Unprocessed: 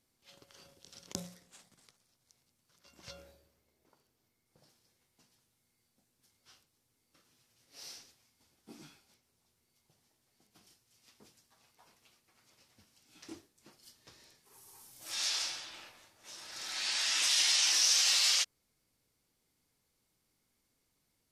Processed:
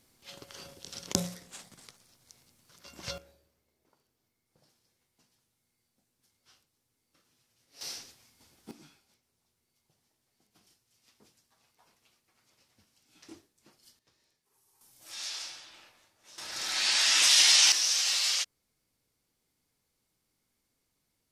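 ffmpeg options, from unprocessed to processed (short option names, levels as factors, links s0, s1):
-af "asetnsamples=n=441:p=0,asendcmd='3.18 volume volume -1.5dB;7.81 volume volume 8.5dB;8.71 volume volume -2dB;13.99 volume volume -12.5dB;14.81 volume volume -4.5dB;16.38 volume volume 7.5dB;17.72 volume volume -0.5dB',volume=3.55"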